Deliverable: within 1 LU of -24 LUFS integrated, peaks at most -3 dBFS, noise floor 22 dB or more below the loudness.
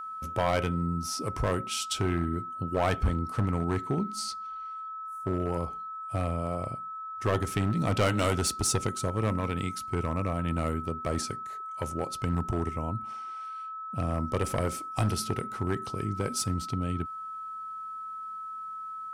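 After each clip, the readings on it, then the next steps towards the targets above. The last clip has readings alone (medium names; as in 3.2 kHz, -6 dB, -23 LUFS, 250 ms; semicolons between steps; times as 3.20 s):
clipped samples 1.1%; clipping level -20.0 dBFS; steady tone 1.3 kHz; tone level -36 dBFS; loudness -31.0 LUFS; peak level -20.0 dBFS; loudness target -24.0 LUFS
-> clip repair -20 dBFS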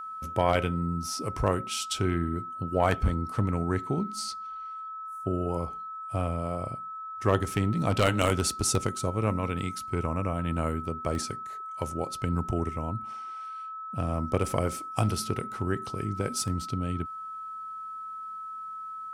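clipped samples 0.0%; steady tone 1.3 kHz; tone level -36 dBFS
-> band-stop 1.3 kHz, Q 30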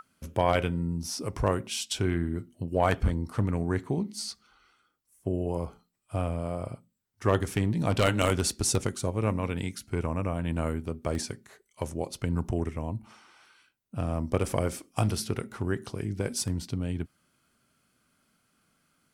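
steady tone not found; loudness -30.5 LUFS; peak level -10.5 dBFS; loudness target -24.0 LUFS
-> trim +6.5 dB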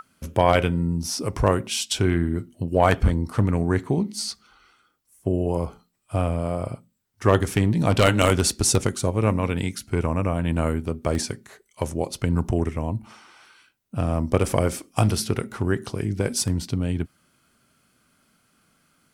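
loudness -24.0 LUFS; peak level -4.0 dBFS; noise floor -67 dBFS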